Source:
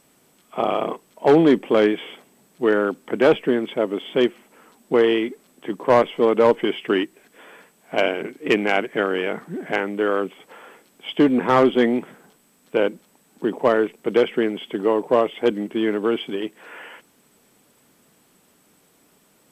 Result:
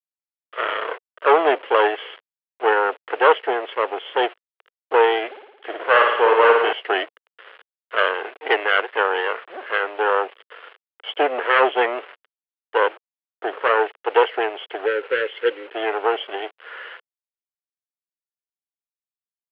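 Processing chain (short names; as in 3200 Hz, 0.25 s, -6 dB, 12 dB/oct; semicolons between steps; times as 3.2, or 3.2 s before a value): minimum comb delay 0.61 ms; 14.85–15.74 spectral gain 580–1300 Hz -23 dB; bit-crush 7-bit; elliptic band-pass 460–2900 Hz, stop band 40 dB; 5.29–6.73 flutter echo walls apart 9.6 m, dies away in 0.93 s; gain +5.5 dB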